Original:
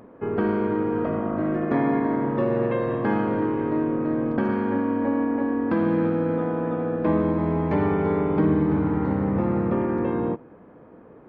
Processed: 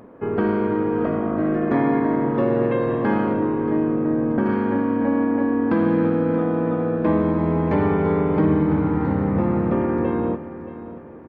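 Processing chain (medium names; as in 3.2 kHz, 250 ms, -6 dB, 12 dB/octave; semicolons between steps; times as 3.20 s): 3.33–4.46 s: treble shelf 2.8 kHz -11.5 dB; feedback delay 628 ms, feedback 40%, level -14 dB; trim +2.5 dB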